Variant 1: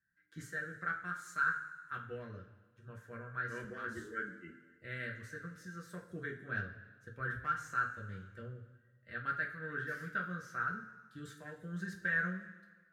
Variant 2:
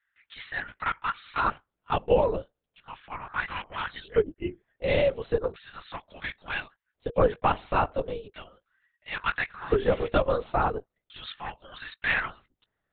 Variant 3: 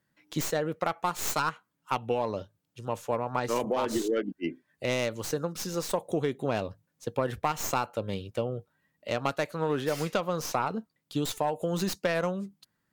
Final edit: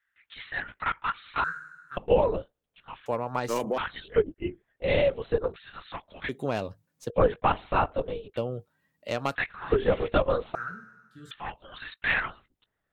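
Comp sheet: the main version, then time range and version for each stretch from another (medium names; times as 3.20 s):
2
1.44–1.97 s: from 1
3.06–3.78 s: from 3
6.29–7.10 s: from 3
8.37–9.35 s: from 3
10.55–11.31 s: from 1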